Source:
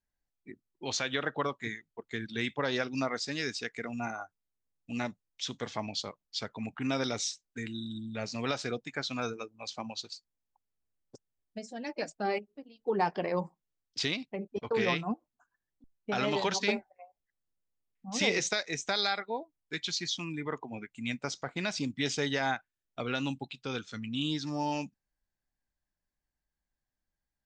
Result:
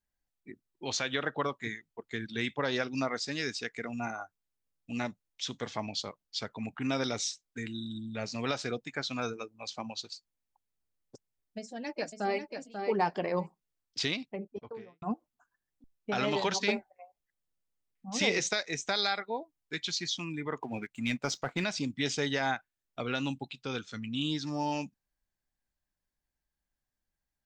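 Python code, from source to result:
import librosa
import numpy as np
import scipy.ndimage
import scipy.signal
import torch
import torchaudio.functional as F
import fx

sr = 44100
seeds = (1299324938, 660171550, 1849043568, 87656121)

y = fx.echo_throw(x, sr, start_s=11.58, length_s=0.93, ms=540, feedback_pct=10, wet_db=-6.0)
y = fx.studio_fade_out(y, sr, start_s=14.17, length_s=0.85)
y = fx.leveller(y, sr, passes=1, at=(20.62, 21.64))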